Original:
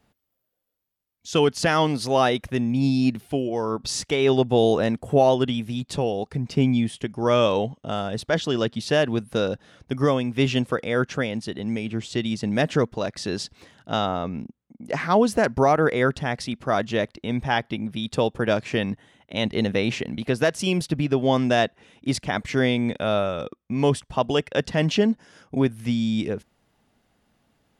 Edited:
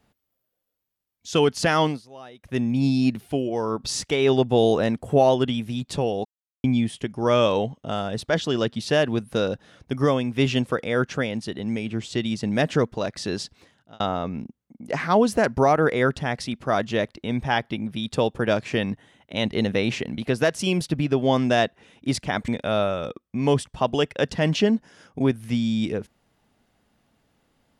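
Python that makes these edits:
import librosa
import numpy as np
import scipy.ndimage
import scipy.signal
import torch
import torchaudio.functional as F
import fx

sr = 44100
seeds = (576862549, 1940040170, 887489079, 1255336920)

y = fx.edit(x, sr, fx.fade_down_up(start_s=1.87, length_s=0.7, db=-23.0, fade_s=0.15),
    fx.silence(start_s=6.25, length_s=0.39),
    fx.fade_out_span(start_s=13.34, length_s=0.66),
    fx.cut(start_s=22.48, length_s=0.36), tone=tone)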